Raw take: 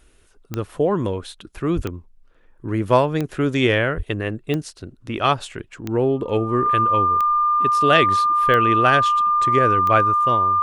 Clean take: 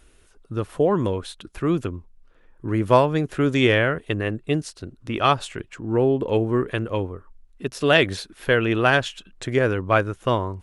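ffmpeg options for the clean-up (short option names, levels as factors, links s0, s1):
-filter_complex "[0:a]adeclick=t=4,bandreject=f=1200:w=30,asplit=3[s0][s1][s2];[s0]afade=t=out:st=1.75:d=0.02[s3];[s1]highpass=f=140:w=0.5412,highpass=f=140:w=1.3066,afade=t=in:st=1.75:d=0.02,afade=t=out:st=1.87:d=0.02[s4];[s2]afade=t=in:st=1.87:d=0.02[s5];[s3][s4][s5]amix=inputs=3:normalize=0,asplit=3[s6][s7][s8];[s6]afade=t=out:st=3.96:d=0.02[s9];[s7]highpass=f=140:w=0.5412,highpass=f=140:w=1.3066,afade=t=in:st=3.96:d=0.02,afade=t=out:st=4.08:d=0.02[s10];[s8]afade=t=in:st=4.08:d=0.02[s11];[s9][s10][s11]amix=inputs=3:normalize=0,asetnsamples=n=441:p=0,asendcmd='10.25 volume volume 3.5dB',volume=1"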